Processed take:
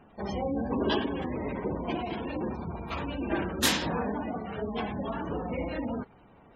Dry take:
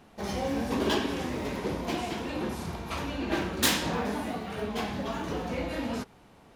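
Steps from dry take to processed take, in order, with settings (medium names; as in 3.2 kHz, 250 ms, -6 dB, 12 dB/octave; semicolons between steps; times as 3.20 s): vibrato 7.6 Hz 10 cents; spectral gate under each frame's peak -20 dB strong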